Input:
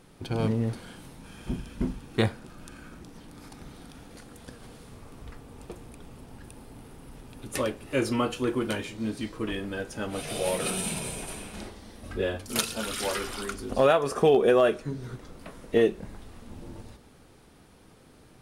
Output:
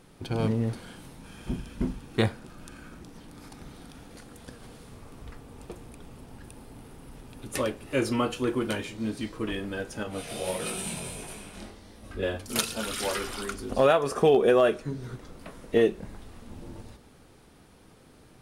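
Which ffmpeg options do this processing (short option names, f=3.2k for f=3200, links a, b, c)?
-filter_complex "[0:a]asettb=1/sr,asplit=3[a][b][c];[a]atrim=end=10.034[d];[b]atrim=start=10.03:end=12.23,asetpts=PTS-STARTPTS,afade=t=in:d=0.004:c=qsin,afade=t=out:st=2.196:d=0.004:c=qsin,flanger=delay=18.5:depth=5:speed=1.5[e];[c]atrim=start=12.226[f];[d][e]acrossfade=d=0.004:c1=hsin:c2=qsin[g];[g][f]acrossfade=d=0.004:c1=qsin:c2=hsin"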